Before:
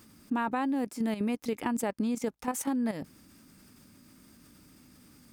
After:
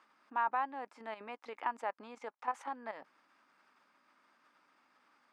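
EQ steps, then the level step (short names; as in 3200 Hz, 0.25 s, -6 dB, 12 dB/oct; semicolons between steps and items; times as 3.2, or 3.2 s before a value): ladder band-pass 1200 Hz, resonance 30%; +9.5 dB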